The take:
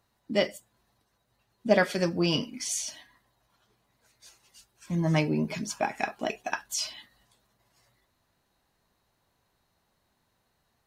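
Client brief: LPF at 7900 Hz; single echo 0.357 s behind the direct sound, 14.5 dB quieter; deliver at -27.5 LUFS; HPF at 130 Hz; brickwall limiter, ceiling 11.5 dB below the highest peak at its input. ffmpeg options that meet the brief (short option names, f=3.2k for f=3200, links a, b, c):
-af "highpass=130,lowpass=7.9k,alimiter=limit=-19.5dB:level=0:latency=1,aecho=1:1:357:0.188,volume=5dB"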